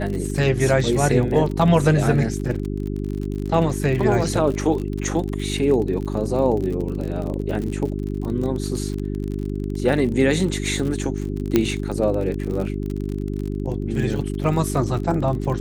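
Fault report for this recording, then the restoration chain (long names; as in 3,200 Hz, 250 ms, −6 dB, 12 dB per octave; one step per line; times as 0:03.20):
surface crackle 42 per second −27 dBFS
mains hum 50 Hz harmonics 8 −26 dBFS
0:11.56: click −4 dBFS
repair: click removal
hum removal 50 Hz, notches 8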